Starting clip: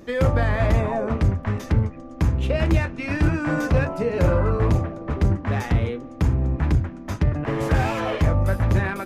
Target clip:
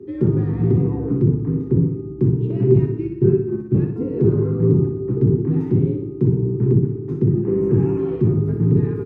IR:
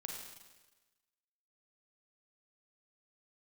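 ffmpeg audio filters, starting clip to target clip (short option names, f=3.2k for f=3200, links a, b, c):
-filter_complex "[0:a]asettb=1/sr,asplit=3[a][b][c];[a]atrim=end=1.294[d];[b]atrim=start=1.29:end=1.76,asetpts=PTS-STARTPTS,afade=t=in:d=0.004:c=qsin,afade=t=out:st=0.466:d=0.004:c=qsin,highshelf=f=3.6k:g=-12[e];[c]atrim=start=1.756[f];[d][e]acrossfade=d=0.004:c1=hsin:c2=qsin[g];[g][f]acrossfade=d=0.004:c1=qsin:c2=hsin,asettb=1/sr,asplit=3[h][i][j];[h]atrim=end=3.074[k];[i]atrim=start=3.07:end=3.96,asetpts=PTS-STARTPTS,afade=t=in:d=0.004:c=qsin,afade=t=out:st=0.886:d=0.004:c=qsin,agate=range=-20dB:threshold=-20dB:ratio=16:detection=peak[l];[j]atrim=start=3.956[m];[k][l]acrossfade=d=0.004:c1=hsin:c2=qsin[n];[n][m]acrossfade=d=0.004:c1=qsin:c2=hsin,asettb=1/sr,asplit=3[o][p][q];[o]atrim=end=7.394[r];[p]atrim=start=7.39:end=7.99,asetpts=PTS-STARTPTS,afade=t=in:d=0.004:c=qsin,afade=t=out:st=0.596:d=0.004:c=qsin,asuperstop=centerf=3900:order=12:qfactor=1.6[s];[q]atrim=start=7.986[t];[r][s]acrossfade=d=0.004:c1=hsin:c2=qsin[u];[u][t]acrossfade=d=0.004:c1=qsin:c2=hsin,asplit=2[v][w];[1:a]atrim=start_sample=2205,lowshelf=f=180:g=10.5[x];[w][x]afir=irnorm=-1:irlink=0,volume=-10.5dB[y];[v][y]amix=inputs=2:normalize=0,asoftclip=type=hard:threshold=-11.5dB,afreqshift=57,firequalizer=gain_entry='entry(250,0);entry(400,11);entry(590,-27);entry(850,-16);entry(1700,-23);entry(6900,-29)':delay=0.05:min_phase=1,aecho=1:1:61|122|183|244|305|366:0.501|0.256|0.13|0.0665|0.0339|0.0173"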